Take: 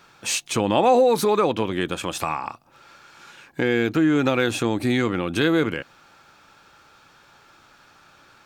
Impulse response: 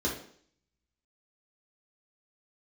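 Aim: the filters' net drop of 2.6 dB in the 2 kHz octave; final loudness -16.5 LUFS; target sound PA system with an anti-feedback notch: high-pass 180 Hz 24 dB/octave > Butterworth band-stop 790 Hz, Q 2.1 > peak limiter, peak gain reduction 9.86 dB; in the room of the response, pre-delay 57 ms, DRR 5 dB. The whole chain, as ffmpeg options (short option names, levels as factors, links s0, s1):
-filter_complex "[0:a]equalizer=f=2000:t=o:g=-3.5,asplit=2[s0][s1];[1:a]atrim=start_sample=2205,adelay=57[s2];[s1][s2]afir=irnorm=-1:irlink=0,volume=0.224[s3];[s0][s3]amix=inputs=2:normalize=0,highpass=f=180:w=0.5412,highpass=f=180:w=1.3066,asuperstop=centerf=790:order=8:qfactor=2.1,volume=2.37,alimiter=limit=0.422:level=0:latency=1"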